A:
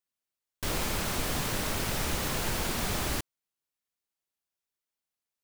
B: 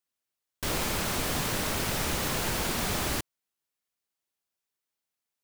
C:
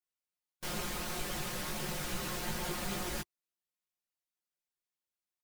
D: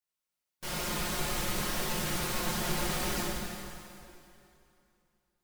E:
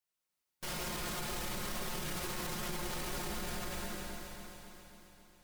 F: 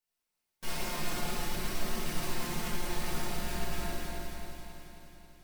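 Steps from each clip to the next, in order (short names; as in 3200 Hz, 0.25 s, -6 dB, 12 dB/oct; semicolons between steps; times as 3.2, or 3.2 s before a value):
low shelf 60 Hz -6 dB; gain +2 dB
harmonic-percussive split harmonic -5 dB; comb 5.6 ms, depth 82%; chorus voices 4, 0.47 Hz, delay 17 ms, depth 3.3 ms; gain -5.5 dB
plate-style reverb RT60 2.7 s, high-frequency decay 0.9×, DRR -4 dB
echo with dull and thin repeats by turns 0.135 s, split 1600 Hz, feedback 79%, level -5.5 dB; limiter -29.5 dBFS, peak gain reduction 12.5 dB
shoebox room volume 250 m³, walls mixed, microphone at 1.6 m; gain -2.5 dB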